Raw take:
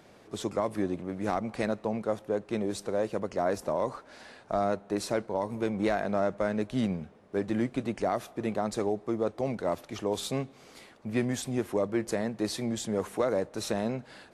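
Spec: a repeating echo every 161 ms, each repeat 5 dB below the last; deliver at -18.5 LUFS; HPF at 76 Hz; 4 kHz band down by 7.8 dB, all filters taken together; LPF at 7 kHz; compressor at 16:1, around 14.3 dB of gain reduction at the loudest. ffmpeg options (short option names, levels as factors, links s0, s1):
-af "highpass=76,lowpass=7000,equalizer=f=4000:t=o:g=-9,acompressor=threshold=0.0126:ratio=16,aecho=1:1:161|322|483|644|805|966|1127:0.562|0.315|0.176|0.0988|0.0553|0.031|0.0173,volume=15.8"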